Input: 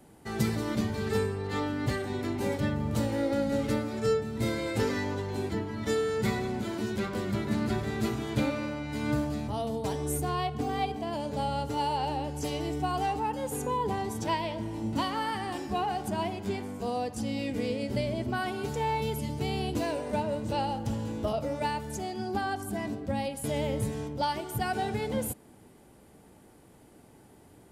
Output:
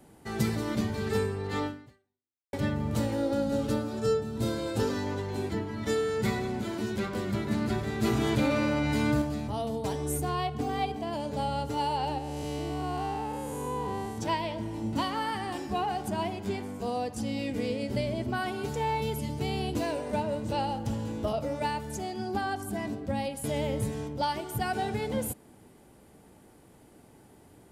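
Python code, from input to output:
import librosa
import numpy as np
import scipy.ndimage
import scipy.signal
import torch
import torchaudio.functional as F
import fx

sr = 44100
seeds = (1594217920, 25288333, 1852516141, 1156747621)

y = fx.peak_eq(x, sr, hz=2100.0, db=-12.5, octaves=0.33, at=(3.14, 5.07))
y = fx.env_flatten(y, sr, amount_pct=70, at=(8.02, 9.22))
y = fx.spec_blur(y, sr, span_ms=273.0, at=(12.18, 14.18))
y = fx.edit(y, sr, fx.fade_out_span(start_s=1.66, length_s=0.87, curve='exp'), tone=tone)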